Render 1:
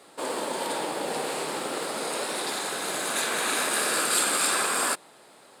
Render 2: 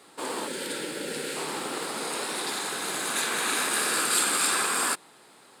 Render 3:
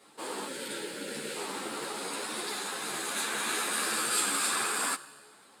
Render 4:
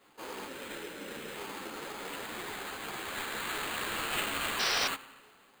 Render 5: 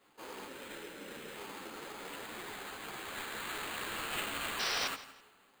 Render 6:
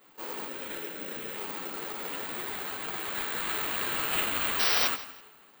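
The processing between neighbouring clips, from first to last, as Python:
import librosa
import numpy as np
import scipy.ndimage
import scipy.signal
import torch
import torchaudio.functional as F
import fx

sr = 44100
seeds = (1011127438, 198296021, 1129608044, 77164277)

y1 = fx.spec_box(x, sr, start_s=0.47, length_s=0.89, low_hz=610.0, high_hz=1300.0, gain_db=-13)
y1 = fx.peak_eq(y1, sr, hz=600.0, db=-7.0, octaves=0.55)
y2 = fx.comb_fb(y1, sr, f0_hz=71.0, decay_s=1.6, harmonics='all', damping=0.0, mix_pct=50)
y2 = fx.ensemble(y2, sr)
y2 = y2 * librosa.db_to_amplitude(4.0)
y3 = fx.sample_hold(y2, sr, seeds[0], rate_hz=5600.0, jitter_pct=0)
y3 = fx.rev_spring(y3, sr, rt60_s=1.5, pass_ms=(33,), chirp_ms=75, drr_db=17.0)
y3 = fx.spec_paint(y3, sr, seeds[1], shape='noise', start_s=4.59, length_s=0.29, low_hz=370.0, high_hz=6100.0, level_db=-26.0)
y3 = y3 * librosa.db_to_amplitude(-4.5)
y4 = fx.echo_feedback(y3, sr, ms=166, feedback_pct=25, wet_db=-17.0)
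y4 = y4 * librosa.db_to_amplitude(-4.5)
y5 = (np.kron(scipy.signal.resample_poly(y4, 1, 2), np.eye(2)[0]) * 2)[:len(y4)]
y5 = y5 * librosa.db_to_amplitude(6.0)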